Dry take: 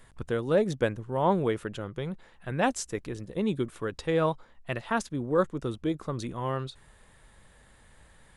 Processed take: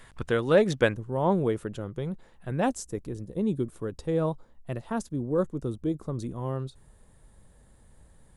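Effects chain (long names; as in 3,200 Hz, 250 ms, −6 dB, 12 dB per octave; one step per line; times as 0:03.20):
parametric band 2,300 Hz +4.5 dB 2.9 octaves, from 0:00.94 −8.5 dB, from 0:02.76 −14.5 dB
level +2.5 dB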